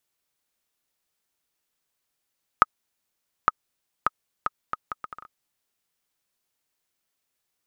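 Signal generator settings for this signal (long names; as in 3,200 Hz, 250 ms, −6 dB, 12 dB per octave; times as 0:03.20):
bouncing ball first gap 0.86 s, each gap 0.68, 1,260 Hz, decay 28 ms −1 dBFS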